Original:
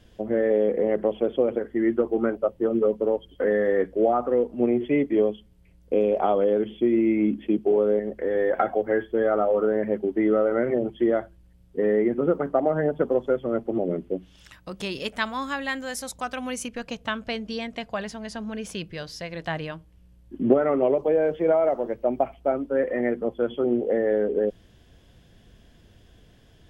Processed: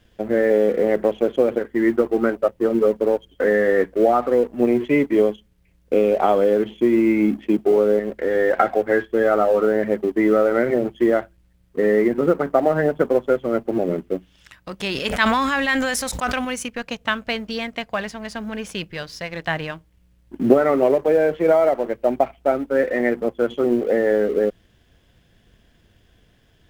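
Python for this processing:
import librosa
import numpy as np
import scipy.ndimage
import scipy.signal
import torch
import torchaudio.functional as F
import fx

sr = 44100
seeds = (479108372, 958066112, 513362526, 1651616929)

y = fx.law_mismatch(x, sr, coded='A')
y = fx.peak_eq(y, sr, hz=1900.0, db=4.5, octaves=1.5)
y = fx.sustainer(y, sr, db_per_s=22.0, at=(14.81, 16.45))
y = F.gain(torch.from_numpy(y), 4.5).numpy()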